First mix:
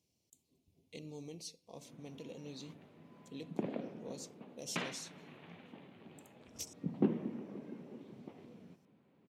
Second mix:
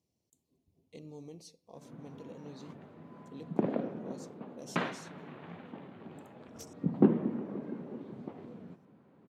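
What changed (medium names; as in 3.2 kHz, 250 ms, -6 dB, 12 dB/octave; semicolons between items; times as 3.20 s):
background +7.5 dB; master: add resonant high shelf 1.9 kHz -6 dB, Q 1.5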